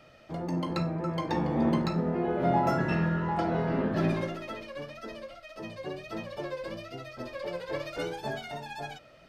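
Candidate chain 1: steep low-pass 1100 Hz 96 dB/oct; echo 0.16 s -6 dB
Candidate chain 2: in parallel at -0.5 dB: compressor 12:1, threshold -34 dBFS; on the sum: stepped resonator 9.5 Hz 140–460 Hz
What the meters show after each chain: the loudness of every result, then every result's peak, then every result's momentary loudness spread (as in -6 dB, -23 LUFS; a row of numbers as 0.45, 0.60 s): -31.0, -40.0 LUFS; -14.5, -19.0 dBFS; 16, 16 LU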